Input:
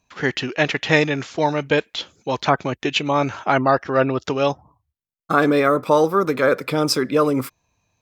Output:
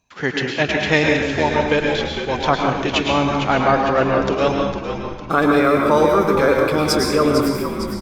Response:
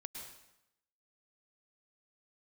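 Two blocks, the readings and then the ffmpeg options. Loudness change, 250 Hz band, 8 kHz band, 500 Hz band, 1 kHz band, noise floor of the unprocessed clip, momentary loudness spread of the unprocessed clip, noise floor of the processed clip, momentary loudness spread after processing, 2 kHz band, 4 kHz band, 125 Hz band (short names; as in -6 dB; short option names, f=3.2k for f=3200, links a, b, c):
+2.0 dB, +3.5 dB, +2.5 dB, +2.5 dB, +2.5 dB, -77 dBFS, 7 LU, -31 dBFS, 8 LU, +2.5 dB, +2.5 dB, +2.5 dB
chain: -filter_complex "[0:a]asplit=7[a][b][c][d][e][f][g];[b]adelay=455,afreqshift=-70,volume=-8.5dB[h];[c]adelay=910,afreqshift=-140,volume=-14dB[i];[d]adelay=1365,afreqshift=-210,volume=-19.5dB[j];[e]adelay=1820,afreqshift=-280,volume=-25dB[k];[f]adelay=2275,afreqshift=-350,volume=-30.6dB[l];[g]adelay=2730,afreqshift=-420,volume=-36.1dB[m];[a][h][i][j][k][l][m]amix=inputs=7:normalize=0[n];[1:a]atrim=start_sample=2205[o];[n][o]afir=irnorm=-1:irlink=0,volume=5dB"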